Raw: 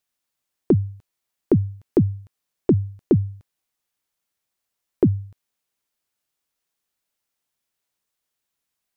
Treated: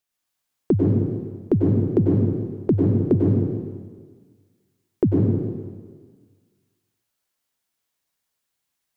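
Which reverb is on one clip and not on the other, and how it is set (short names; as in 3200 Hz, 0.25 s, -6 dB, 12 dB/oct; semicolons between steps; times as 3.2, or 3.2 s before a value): plate-style reverb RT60 1.6 s, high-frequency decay 0.95×, pre-delay 85 ms, DRR -3 dB; gain -2.5 dB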